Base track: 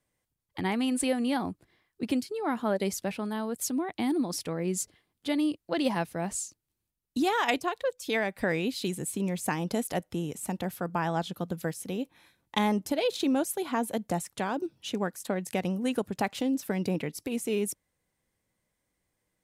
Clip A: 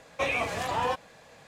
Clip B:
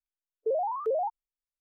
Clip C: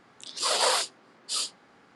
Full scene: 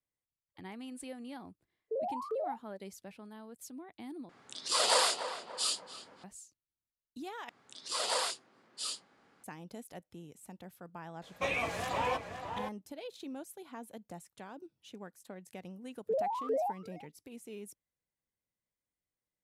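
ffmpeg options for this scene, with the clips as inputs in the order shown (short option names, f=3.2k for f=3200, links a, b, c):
-filter_complex "[2:a]asplit=2[a][b];[3:a]asplit=2[c][d];[0:a]volume=-17dB[e];[a]asplit=2[f][g];[g]adelay=35,volume=-11dB[h];[f][h]amix=inputs=2:normalize=0[i];[c]asplit=2[j][k];[k]adelay=290,lowpass=f=2.1k:p=1,volume=-9dB,asplit=2[l][m];[m]adelay=290,lowpass=f=2.1k:p=1,volume=0.44,asplit=2[n][o];[o]adelay=290,lowpass=f=2.1k:p=1,volume=0.44,asplit=2[p][q];[q]adelay=290,lowpass=f=2.1k:p=1,volume=0.44,asplit=2[r][s];[s]adelay=290,lowpass=f=2.1k:p=1,volume=0.44[t];[j][l][n][p][r][t]amix=inputs=6:normalize=0[u];[1:a]asplit=2[v][w];[w]adelay=519,volume=-6dB,highshelf=f=4k:g=-11.7[x];[v][x]amix=inputs=2:normalize=0[y];[b]asplit=2[z][aa];[aa]adelay=340,highpass=300,lowpass=3.4k,asoftclip=type=hard:threshold=-30dB,volume=-17dB[ab];[z][ab]amix=inputs=2:normalize=0[ac];[e]asplit=3[ad][ae][af];[ad]atrim=end=4.294[ag];[u]atrim=end=1.95,asetpts=PTS-STARTPTS,volume=-3dB[ah];[ae]atrim=start=6.236:end=7.494[ai];[d]atrim=end=1.95,asetpts=PTS-STARTPTS,volume=-8.5dB[aj];[af]atrim=start=9.436[ak];[i]atrim=end=1.6,asetpts=PTS-STARTPTS,volume=-7.5dB,afade=t=in:d=0.004:c=hsin,afade=t=out:st=1.596:d=0.004:c=hsin,adelay=1450[al];[y]atrim=end=1.47,asetpts=PTS-STARTPTS,volume=-5dB,afade=t=in:d=0.004:c=hsin,afade=t=out:st=1.466:d=0.004:c=hsin,adelay=494802S[am];[ac]atrim=end=1.6,asetpts=PTS-STARTPTS,volume=-4dB,afade=t=in:d=0.004:c=hsin,afade=t=out:st=1.596:d=0.004:c=hsin,adelay=15630[an];[ag][ah]acrossfade=d=0.004:c1=hsin:c2=hsin[ao];[ao][ai]acrossfade=d=0.004:c1=hsin:c2=hsin[ap];[ap][aj]acrossfade=d=0.004:c1=hsin:c2=hsin[aq];[aq][ak]acrossfade=d=0.004:c1=hsin:c2=hsin[ar];[ar][al][am][an]amix=inputs=4:normalize=0"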